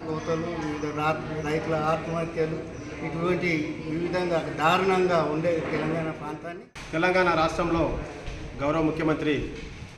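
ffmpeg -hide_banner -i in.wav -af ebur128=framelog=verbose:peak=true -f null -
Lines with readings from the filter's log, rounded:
Integrated loudness:
  I:         -26.4 LUFS
  Threshold: -36.7 LUFS
Loudness range:
  LRA:         3.0 LU
  Threshold: -46.4 LUFS
  LRA low:   -28.2 LUFS
  LRA high:  -25.1 LUFS
True peak:
  Peak:       -9.5 dBFS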